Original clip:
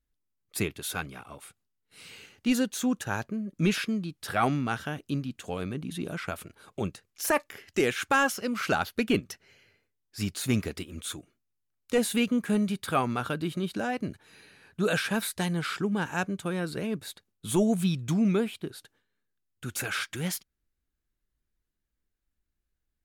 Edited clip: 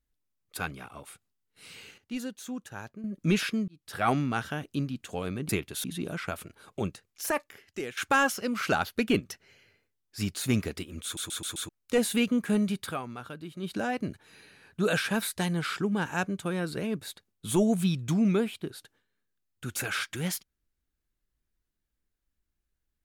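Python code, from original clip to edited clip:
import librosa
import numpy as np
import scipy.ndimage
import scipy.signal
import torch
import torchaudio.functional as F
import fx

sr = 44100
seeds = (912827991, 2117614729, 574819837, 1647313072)

y = fx.edit(x, sr, fx.move(start_s=0.57, length_s=0.35, to_s=5.84),
    fx.clip_gain(start_s=2.33, length_s=1.06, db=-10.0),
    fx.fade_in_span(start_s=4.03, length_s=0.41),
    fx.fade_out_to(start_s=6.84, length_s=1.13, floor_db=-14.0),
    fx.stutter_over(start_s=11.04, slice_s=0.13, count=5),
    fx.fade_down_up(start_s=12.83, length_s=0.89, db=-10.5, fade_s=0.15), tone=tone)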